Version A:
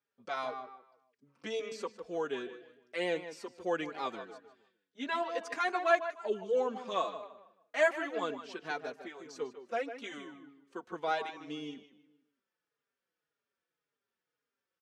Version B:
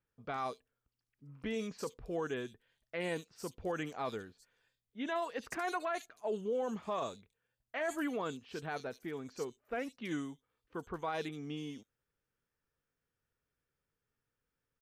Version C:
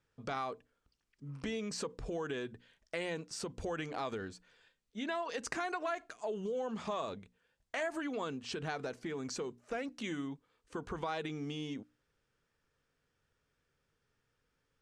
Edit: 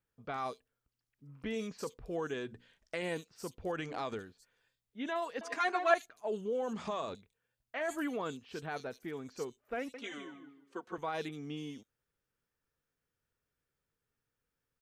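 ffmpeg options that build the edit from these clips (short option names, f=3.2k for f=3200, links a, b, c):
-filter_complex "[2:a]asplit=3[a][b][c];[0:a]asplit=2[d][e];[1:a]asplit=6[f][g][h][i][j][k];[f]atrim=end=2.342[l];[a]atrim=start=2.338:end=3.022[m];[g]atrim=start=3.018:end=3.762[n];[b]atrim=start=3.758:end=4.192[o];[h]atrim=start=4.188:end=5.412[p];[d]atrim=start=5.408:end=5.942[q];[i]atrim=start=5.938:end=6.732[r];[c]atrim=start=6.728:end=7.152[s];[j]atrim=start=7.148:end=9.942[t];[e]atrim=start=9.938:end=10.982[u];[k]atrim=start=10.978[v];[l][m]acrossfade=d=0.004:c1=hsin:c2=hsin[w];[w][n]acrossfade=d=0.004:c1=hsin:c2=hsin[x];[x][o]acrossfade=d=0.004:c1=hsin:c2=hsin[y];[y][p]acrossfade=d=0.004:c1=hsin:c2=hsin[z];[z][q]acrossfade=d=0.004:c1=hsin:c2=hsin[aa];[aa][r]acrossfade=d=0.004:c1=hsin:c2=hsin[ab];[ab][s]acrossfade=d=0.004:c1=hsin:c2=hsin[ac];[ac][t]acrossfade=d=0.004:c1=hsin:c2=hsin[ad];[ad][u]acrossfade=d=0.004:c1=hsin:c2=hsin[ae];[ae][v]acrossfade=d=0.004:c1=hsin:c2=hsin"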